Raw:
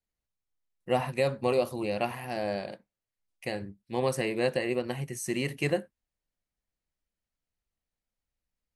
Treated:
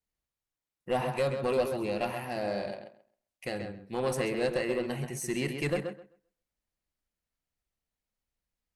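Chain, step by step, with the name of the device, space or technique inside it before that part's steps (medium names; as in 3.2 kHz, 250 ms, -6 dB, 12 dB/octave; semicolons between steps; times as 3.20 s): rockabilly slapback (valve stage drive 20 dB, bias 0.25; tape echo 132 ms, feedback 20%, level -5 dB, low-pass 3.2 kHz)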